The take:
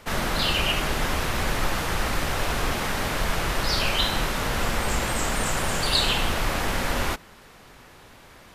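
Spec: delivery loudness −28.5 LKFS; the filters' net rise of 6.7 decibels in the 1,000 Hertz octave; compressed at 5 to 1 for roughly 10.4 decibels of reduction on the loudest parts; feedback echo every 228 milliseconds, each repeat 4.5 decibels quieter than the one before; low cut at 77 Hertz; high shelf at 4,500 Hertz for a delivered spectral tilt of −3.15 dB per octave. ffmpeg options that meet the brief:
ffmpeg -i in.wav -af "highpass=77,equalizer=frequency=1000:width_type=o:gain=8,highshelf=frequency=4500:gain=5.5,acompressor=threshold=-26dB:ratio=5,aecho=1:1:228|456|684|912|1140|1368|1596|1824|2052:0.596|0.357|0.214|0.129|0.0772|0.0463|0.0278|0.0167|0.01,volume=-2.5dB" out.wav

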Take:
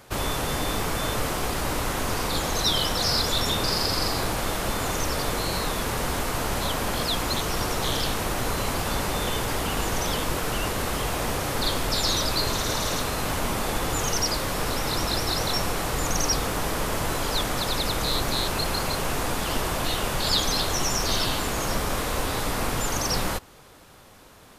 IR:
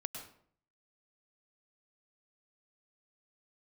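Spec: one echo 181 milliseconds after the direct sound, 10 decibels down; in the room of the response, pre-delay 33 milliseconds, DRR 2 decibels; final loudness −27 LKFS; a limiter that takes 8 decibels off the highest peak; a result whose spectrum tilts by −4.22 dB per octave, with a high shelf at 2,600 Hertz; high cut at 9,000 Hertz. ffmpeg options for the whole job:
-filter_complex "[0:a]lowpass=9000,highshelf=frequency=2600:gain=-6.5,alimiter=limit=-21.5dB:level=0:latency=1,aecho=1:1:181:0.316,asplit=2[link_01][link_02];[1:a]atrim=start_sample=2205,adelay=33[link_03];[link_02][link_03]afir=irnorm=-1:irlink=0,volume=-1dB[link_04];[link_01][link_04]amix=inputs=2:normalize=0,volume=2dB"

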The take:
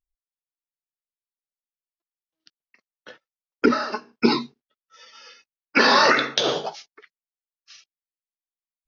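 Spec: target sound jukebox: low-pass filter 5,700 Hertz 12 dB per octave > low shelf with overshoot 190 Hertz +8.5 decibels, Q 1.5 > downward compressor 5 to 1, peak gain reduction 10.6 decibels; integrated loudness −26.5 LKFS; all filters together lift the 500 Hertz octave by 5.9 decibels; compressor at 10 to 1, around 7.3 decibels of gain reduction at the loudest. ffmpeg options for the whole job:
ffmpeg -i in.wav -af "equalizer=frequency=500:width_type=o:gain=8.5,acompressor=threshold=-15dB:ratio=10,lowpass=5700,lowshelf=frequency=190:width_type=q:width=1.5:gain=8.5,acompressor=threshold=-25dB:ratio=5,volume=3.5dB" out.wav

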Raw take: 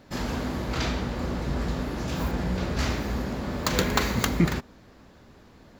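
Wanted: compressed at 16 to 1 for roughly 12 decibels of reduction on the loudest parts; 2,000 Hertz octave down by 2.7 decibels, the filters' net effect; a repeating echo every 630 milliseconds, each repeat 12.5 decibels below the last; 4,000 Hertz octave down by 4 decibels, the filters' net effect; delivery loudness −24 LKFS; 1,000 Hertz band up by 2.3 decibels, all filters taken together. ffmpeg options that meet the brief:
ffmpeg -i in.wav -af "equalizer=frequency=1000:width_type=o:gain=4,equalizer=frequency=2000:width_type=o:gain=-4,equalizer=frequency=4000:width_type=o:gain=-4,acompressor=threshold=-28dB:ratio=16,aecho=1:1:630|1260|1890:0.237|0.0569|0.0137,volume=9.5dB" out.wav

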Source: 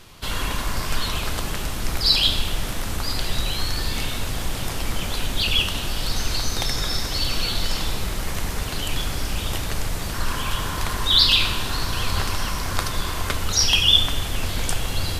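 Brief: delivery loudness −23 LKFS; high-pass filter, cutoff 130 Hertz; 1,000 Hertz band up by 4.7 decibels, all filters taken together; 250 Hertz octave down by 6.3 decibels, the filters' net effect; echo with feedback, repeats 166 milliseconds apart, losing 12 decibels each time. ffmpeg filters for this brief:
ffmpeg -i in.wav -af "highpass=130,equalizer=frequency=250:width_type=o:gain=-8.5,equalizer=frequency=1000:width_type=o:gain=6,aecho=1:1:166|332|498:0.251|0.0628|0.0157,volume=-0.5dB" out.wav

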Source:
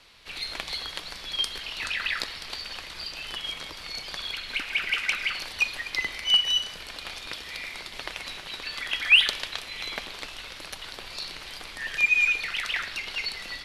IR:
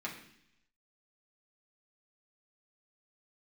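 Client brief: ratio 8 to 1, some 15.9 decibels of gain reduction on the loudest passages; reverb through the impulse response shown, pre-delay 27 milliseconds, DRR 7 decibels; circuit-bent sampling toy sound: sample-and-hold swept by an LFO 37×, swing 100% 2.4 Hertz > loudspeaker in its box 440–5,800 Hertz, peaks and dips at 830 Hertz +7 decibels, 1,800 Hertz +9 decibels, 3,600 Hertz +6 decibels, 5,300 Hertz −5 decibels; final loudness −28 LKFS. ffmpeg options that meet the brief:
-filter_complex "[0:a]acompressor=threshold=-29dB:ratio=8,asplit=2[link_01][link_02];[1:a]atrim=start_sample=2205,adelay=27[link_03];[link_02][link_03]afir=irnorm=-1:irlink=0,volume=-9dB[link_04];[link_01][link_04]amix=inputs=2:normalize=0,acrusher=samples=37:mix=1:aa=0.000001:lfo=1:lforange=37:lforate=2.4,highpass=440,equalizer=frequency=830:width_type=q:width=4:gain=7,equalizer=frequency=1800:width_type=q:width=4:gain=9,equalizer=frequency=3600:width_type=q:width=4:gain=6,equalizer=frequency=5300:width_type=q:width=4:gain=-5,lowpass=frequency=5800:width=0.5412,lowpass=frequency=5800:width=1.3066,volume=8.5dB"

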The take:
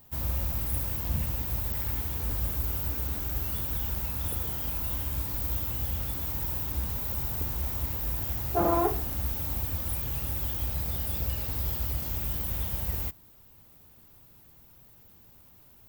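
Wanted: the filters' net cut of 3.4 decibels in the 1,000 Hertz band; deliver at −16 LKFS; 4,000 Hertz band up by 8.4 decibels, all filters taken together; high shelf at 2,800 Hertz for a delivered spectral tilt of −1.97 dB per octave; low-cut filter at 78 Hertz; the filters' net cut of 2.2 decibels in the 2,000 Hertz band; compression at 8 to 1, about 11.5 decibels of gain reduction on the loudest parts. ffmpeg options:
ffmpeg -i in.wav -af "highpass=78,equalizer=frequency=1000:width_type=o:gain=-4.5,equalizer=frequency=2000:width_type=o:gain=-6.5,highshelf=frequency=2800:gain=4.5,equalizer=frequency=4000:width_type=o:gain=9,acompressor=threshold=-33dB:ratio=8,volume=17.5dB" out.wav

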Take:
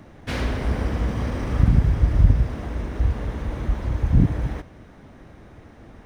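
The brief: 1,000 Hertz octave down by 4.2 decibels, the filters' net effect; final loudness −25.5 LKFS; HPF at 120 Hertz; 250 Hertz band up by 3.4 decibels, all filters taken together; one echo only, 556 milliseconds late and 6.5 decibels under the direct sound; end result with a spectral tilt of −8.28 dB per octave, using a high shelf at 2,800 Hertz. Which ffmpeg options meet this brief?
ffmpeg -i in.wav -af "highpass=120,equalizer=frequency=250:width_type=o:gain=5.5,equalizer=frequency=1000:width_type=o:gain=-5.5,highshelf=frequency=2800:gain=-3.5,aecho=1:1:556:0.473" out.wav

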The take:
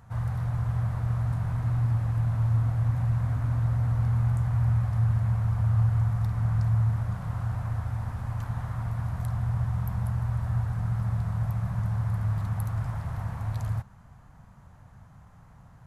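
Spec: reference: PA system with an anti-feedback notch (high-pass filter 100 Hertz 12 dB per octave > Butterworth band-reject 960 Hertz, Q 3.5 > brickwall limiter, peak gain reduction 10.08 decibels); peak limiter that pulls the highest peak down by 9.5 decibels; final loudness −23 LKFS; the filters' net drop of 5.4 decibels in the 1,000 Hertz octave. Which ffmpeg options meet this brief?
ffmpeg -i in.wav -af "equalizer=frequency=1000:width_type=o:gain=-4,alimiter=level_in=0.5dB:limit=-24dB:level=0:latency=1,volume=-0.5dB,highpass=100,asuperstop=centerf=960:order=8:qfactor=3.5,volume=18.5dB,alimiter=limit=-17dB:level=0:latency=1" out.wav

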